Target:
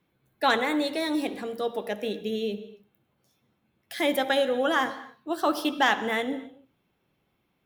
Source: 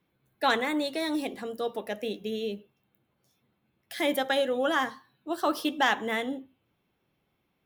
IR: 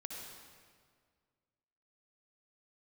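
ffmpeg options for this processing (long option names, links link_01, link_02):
-filter_complex "[0:a]asplit=2[link_01][link_02];[1:a]atrim=start_sample=2205,afade=type=out:start_time=0.33:duration=0.01,atrim=end_sample=14994,highshelf=frequency=8500:gain=-9.5[link_03];[link_02][link_03]afir=irnorm=-1:irlink=0,volume=-6dB[link_04];[link_01][link_04]amix=inputs=2:normalize=0"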